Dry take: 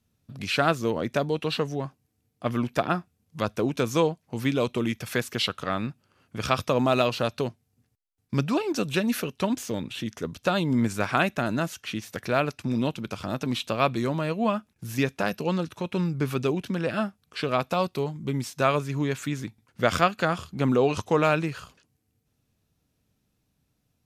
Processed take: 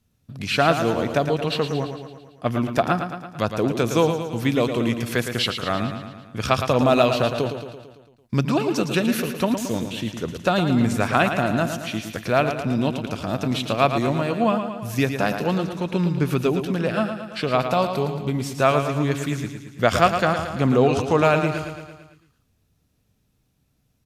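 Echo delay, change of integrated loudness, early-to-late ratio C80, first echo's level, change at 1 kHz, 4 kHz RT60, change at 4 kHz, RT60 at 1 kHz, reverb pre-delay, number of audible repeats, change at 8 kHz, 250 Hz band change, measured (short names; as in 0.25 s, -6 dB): 0.112 s, +4.5 dB, none, -8.0 dB, +5.5 dB, none, +4.0 dB, none, none, 6, +4.0 dB, +4.5 dB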